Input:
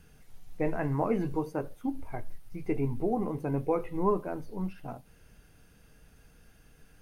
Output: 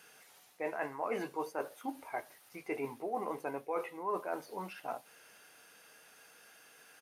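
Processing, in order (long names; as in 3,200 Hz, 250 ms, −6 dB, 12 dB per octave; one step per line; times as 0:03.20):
high-pass filter 650 Hz 12 dB per octave
reversed playback
downward compressor 6 to 1, threshold −40 dBFS, peak gain reduction 13 dB
reversed playback
downsampling to 32,000 Hz
level +7 dB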